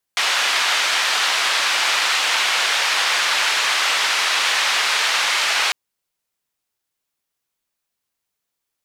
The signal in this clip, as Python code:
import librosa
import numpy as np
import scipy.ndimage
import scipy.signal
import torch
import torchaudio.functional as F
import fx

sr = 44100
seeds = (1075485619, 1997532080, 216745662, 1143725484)

y = fx.band_noise(sr, seeds[0], length_s=5.55, low_hz=970.0, high_hz=3600.0, level_db=-19.0)